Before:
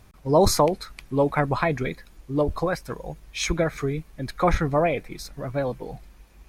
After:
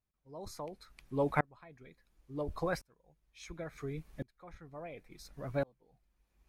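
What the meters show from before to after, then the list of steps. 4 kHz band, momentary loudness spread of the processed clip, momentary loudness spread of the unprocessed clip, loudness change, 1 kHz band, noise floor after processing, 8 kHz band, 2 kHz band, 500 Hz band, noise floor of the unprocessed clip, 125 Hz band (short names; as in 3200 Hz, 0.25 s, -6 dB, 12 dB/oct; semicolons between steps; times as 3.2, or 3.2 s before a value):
-21.5 dB, 19 LU, 16 LU, -15.0 dB, -16.0 dB, -80 dBFS, -23.0 dB, -12.5 dB, -16.0 dB, -52 dBFS, -15.0 dB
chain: dB-ramp tremolo swelling 0.71 Hz, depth 32 dB; gain -6 dB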